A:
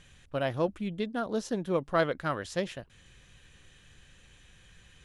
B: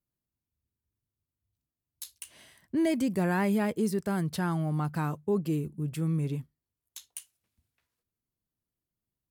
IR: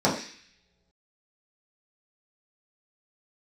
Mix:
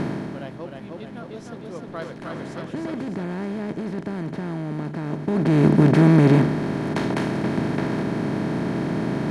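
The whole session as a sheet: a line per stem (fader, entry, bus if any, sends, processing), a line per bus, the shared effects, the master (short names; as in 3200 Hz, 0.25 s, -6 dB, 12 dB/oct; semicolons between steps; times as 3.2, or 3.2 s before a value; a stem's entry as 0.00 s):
-8.0 dB, 0.00 s, no send, echo send -3.5 dB, dry
+2.5 dB, 0.00 s, no send, no echo send, per-bin compression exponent 0.2; LPF 4400 Hz 12 dB/oct; low shelf 340 Hz +10 dB; auto duck -15 dB, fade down 0.60 s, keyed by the first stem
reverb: off
echo: feedback echo 0.307 s, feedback 56%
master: dry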